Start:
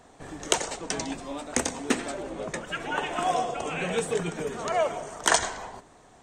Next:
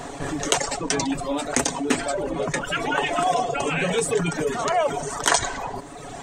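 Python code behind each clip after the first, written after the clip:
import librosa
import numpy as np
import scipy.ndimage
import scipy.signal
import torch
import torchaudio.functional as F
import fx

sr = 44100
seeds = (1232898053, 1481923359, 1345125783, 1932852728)

y = fx.dereverb_blind(x, sr, rt60_s=0.83)
y = y + 0.45 * np.pad(y, (int(7.1 * sr / 1000.0), 0))[:len(y)]
y = fx.env_flatten(y, sr, amount_pct=50)
y = y * 10.0 ** (1.0 / 20.0)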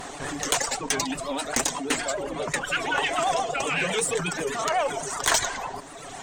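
y = fx.tilt_shelf(x, sr, db=-4.5, hz=700.0)
y = fx.vibrato(y, sr, rate_hz=8.0, depth_cents=97.0)
y = fx.tube_stage(y, sr, drive_db=11.0, bias=0.3)
y = y * 10.0 ** (-2.0 / 20.0)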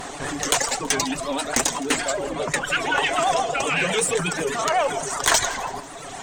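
y = fx.echo_feedback(x, sr, ms=164, feedback_pct=50, wet_db=-19.0)
y = y * 10.0 ** (3.5 / 20.0)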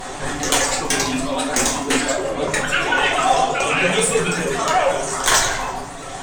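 y = fx.room_shoebox(x, sr, seeds[0], volume_m3=79.0, walls='mixed', distance_m=0.97)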